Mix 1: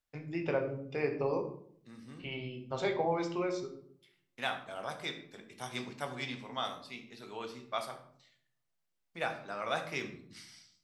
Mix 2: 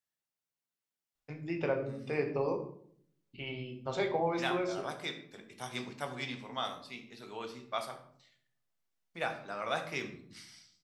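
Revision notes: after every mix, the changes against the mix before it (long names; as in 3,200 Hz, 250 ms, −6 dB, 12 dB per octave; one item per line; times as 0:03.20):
first voice: entry +1.15 s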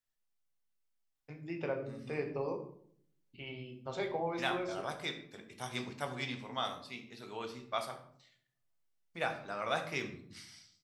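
first voice −4.5 dB
second voice: remove high-pass filter 110 Hz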